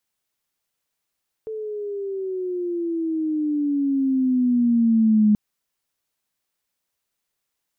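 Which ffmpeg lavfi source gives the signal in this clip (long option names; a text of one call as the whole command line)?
ffmpeg -f lavfi -i "aevalsrc='pow(10,(-12.5+15*(t/3.88-1))/20)*sin(2*PI*442*3.88/(-13*log(2)/12)*(exp(-13*log(2)/12*t/3.88)-1))':duration=3.88:sample_rate=44100" out.wav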